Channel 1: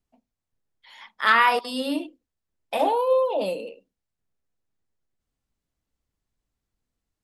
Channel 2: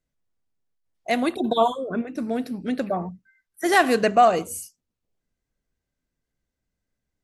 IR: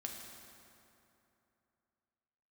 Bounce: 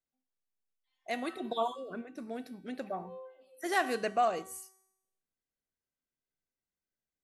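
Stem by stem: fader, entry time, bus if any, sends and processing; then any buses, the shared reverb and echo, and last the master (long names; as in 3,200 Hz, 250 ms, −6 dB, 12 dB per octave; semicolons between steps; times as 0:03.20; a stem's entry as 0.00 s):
−6.5 dB, 0.00 s, no send, tuned comb filter 260 Hz, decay 0.22 s, harmonics all, mix 100%; automatic ducking −8 dB, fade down 0.40 s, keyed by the second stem
−1.5 dB, 0.00 s, no send, no processing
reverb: not used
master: low-shelf EQ 160 Hz −11.5 dB; tuned comb filter 380 Hz, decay 0.83 s, mix 70%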